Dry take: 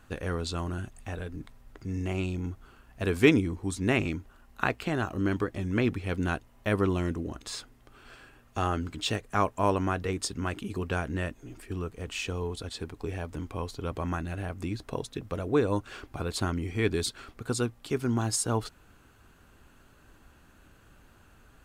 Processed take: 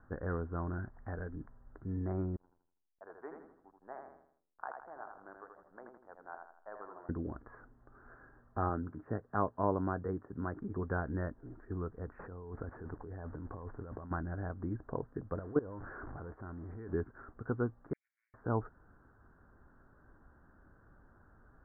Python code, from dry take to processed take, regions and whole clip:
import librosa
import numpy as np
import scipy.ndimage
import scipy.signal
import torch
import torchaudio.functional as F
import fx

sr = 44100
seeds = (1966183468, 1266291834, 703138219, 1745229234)

y = fx.chain(x, sr, fx.peak_eq(hz=2300.0, db=8.5, octaves=0.84),
    fx.resample_linear(factor=6), at=(0.73, 1.35))
y = fx.chain(y, sr, fx.ladder_bandpass(hz=930.0, resonance_pct=45),
    fx.backlash(play_db=-51.5),
    fx.echo_feedback(ms=81, feedback_pct=42, wet_db=-5), at=(2.36, 7.09))
y = fx.chain(y, sr, fx.highpass(hz=88.0, slope=12),
    fx.air_absorb(metres=440.0), at=(8.69, 10.56))
y = fx.chain(y, sr, fx.delta_mod(bps=64000, step_db=-48.5),
    fx.over_compress(threshold_db=-39.0, ratio=-1.0), at=(12.19, 14.11))
y = fx.chain(y, sr, fx.zero_step(step_db=-33.0),
    fx.level_steps(step_db=20), at=(15.39, 16.93))
y = fx.chain(y, sr, fx.lower_of_two(delay_ms=8.0),
    fx.cheby_ripple_highpass(hz=2200.0, ripple_db=3), at=(17.93, 18.34))
y = fx.env_lowpass_down(y, sr, base_hz=1300.0, full_db=-22.5)
y = scipy.signal.sosfilt(scipy.signal.butter(12, 1700.0, 'lowpass', fs=sr, output='sos'), y)
y = y * 10.0 ** (-4.5 / 20.0)